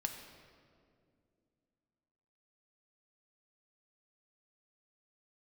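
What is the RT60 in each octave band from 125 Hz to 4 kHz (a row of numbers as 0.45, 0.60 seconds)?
3.0, 3.3, 2.7, 1.9, 1.6, 1.4 seconds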